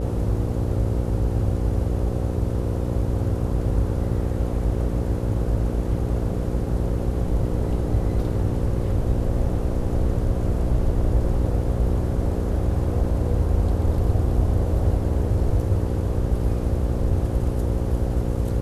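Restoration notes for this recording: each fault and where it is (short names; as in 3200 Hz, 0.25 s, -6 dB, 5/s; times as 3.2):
buzz 60 Hz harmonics 9 -26 dBFS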